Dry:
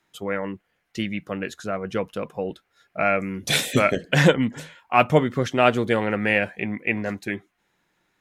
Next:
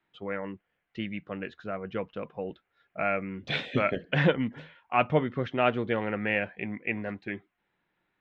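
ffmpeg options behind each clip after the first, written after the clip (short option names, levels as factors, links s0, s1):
-af "lowpass=f=3400:w=0.5412,lowpass=f=3400:w=1.3066,volume=0.447"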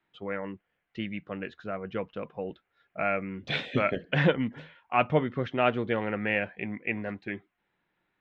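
-af anull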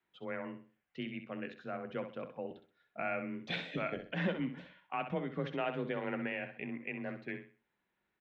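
-af "alimiter=limit=0.119:level=0:latency=1:release=147,afreqshift=25,aecho=1:1:64|128|192|256:0.355|0.11|0.0341|0.0106,volume=0.473"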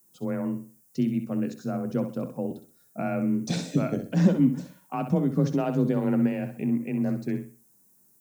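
-af "aexciter=amount=13:drive=8:freq=5000,equalizer=f=125:t=o:w=1:g=10,equalizer=f=250:t=o:w=1:g=9,equalizer=f=2000:t=o:w=1:g=-11,equalizer=f=4000:t=o:w=1:g=-4,volume=2.11"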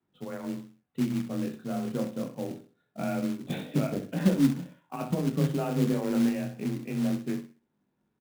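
-af "flanger=delay=20:depth=7.2:speed=0.26,aresample=8000,aresample=44100,acrusher=bits=4:mode=log:mix=0:aa=0.000001"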